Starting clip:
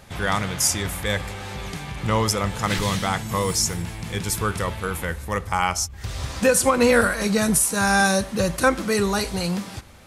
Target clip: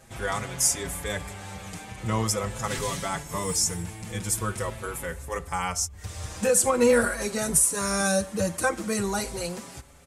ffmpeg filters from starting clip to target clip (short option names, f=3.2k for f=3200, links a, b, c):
-filter_complex "[0:a]equalizer=f=500:t=o:w=1:g=3,equalizer=f=4k:t=o:w=1:g=-4,equalizer=f=8k:t=o:w=1:g=8,asplit=2[a][b];[b]adelay=5.8,afreqshift=0.44[c];[a][c]amix=inputs=2:normalize=1,volume=-3.5dB"